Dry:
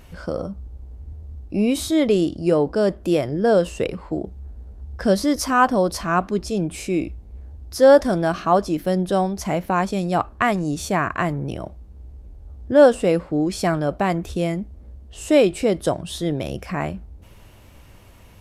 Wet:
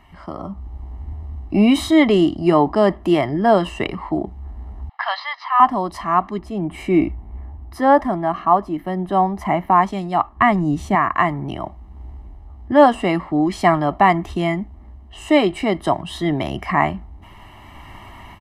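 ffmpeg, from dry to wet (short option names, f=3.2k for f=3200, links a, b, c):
-filter_complex "[0:a]asettb=1/sr,asplit=3[a][b][c];[a]atrim=end=4.894[d];[b]atrim=start=4.89:end=5.6,asetpts=PTS-STARTPTS,afade=t=in:d=0.004:c=qsin,afade=t=out:st=0.706:d=0.004:c=qsin,asuperpass=centerf=1900:order=12:qfactor=0.52[e];[c]atrim=start=5.596[f];[d][e]acrossfade=d=0.004:c1=hsin:c2=qsin[g];[g][f]acrossfade=d=0.004:c1=qsin:c2=hsin,asplit=3[h][i][j];[h]afade=t=out:st=6.38:d=0.02[k];[i]equalizer=f=5.5k:t=o:w=2.1:g=-10,afade=t=in:st=6.38:d=0.02,afade=t=out:st=9.81:d=0.02[l];[j]afade=t=in:st=9.81:d=0.02[m];[k][l][m]amix=inputs=3:normalize=0,asettb=1/sr,asplit=3[n][o][p];[n]atrim=end=10.364[q];[o]atrim=start=10.36:end=10.95,asetpts=PTS-STARTPTS,afade=t=in:d=0.004:c=qsin,afade=t=out:st=0.586:d=0.004:c=qsin,lowshelf=f=370:g=11[r];[p]atrim=start=10.946[s];[q][r]acrossfade=d=0.004:c1=hsin:c2=qsin[t];[t][s]acrossfade=d=0.004:c1=qsin:c2=hsin,acrossover=split=300 2900:gain=0.251 1 0.158[u][v][w];[u][v][w]amix=inputs=3:normalize=0,aecho=1:1:1:0.96,dynaudnorm=f=390:g=3:m=13.5dB,volume=-1dB"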